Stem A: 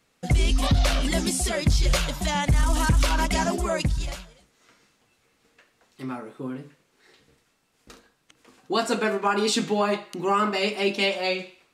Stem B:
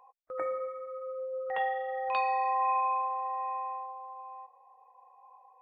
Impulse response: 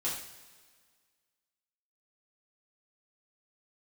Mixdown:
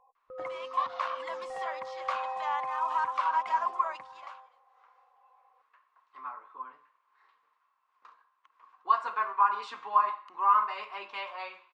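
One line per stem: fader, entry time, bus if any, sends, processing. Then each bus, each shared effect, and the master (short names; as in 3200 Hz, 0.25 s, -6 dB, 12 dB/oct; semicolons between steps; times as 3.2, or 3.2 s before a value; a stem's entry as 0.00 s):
+3.0 dB, 0.15 s, no send, ladder band-pass 1100 Hz, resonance 85%
-8.0 dB, 0.00 s, no send, tilt -3 dB/oct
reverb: off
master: dry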